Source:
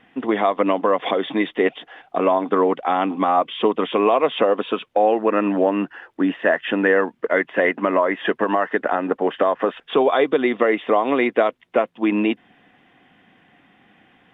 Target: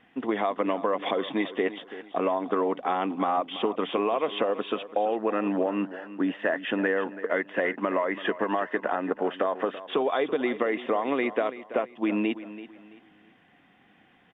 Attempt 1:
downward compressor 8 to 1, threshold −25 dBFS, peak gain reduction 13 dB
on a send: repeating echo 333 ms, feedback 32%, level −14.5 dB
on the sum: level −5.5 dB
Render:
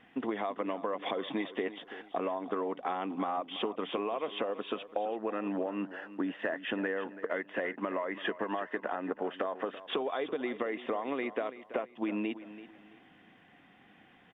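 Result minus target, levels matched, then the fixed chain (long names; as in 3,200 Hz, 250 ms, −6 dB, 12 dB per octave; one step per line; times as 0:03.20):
downward compressor: peak gain reduction +8.5 dB
downward compressor 8 to 1, threshold −15.5 dBFS, peak gain reduction 4.5 dB
on a send: repeating echo 333 ms, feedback 32%, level −14.5 dB
on the sum: level −5.5 dB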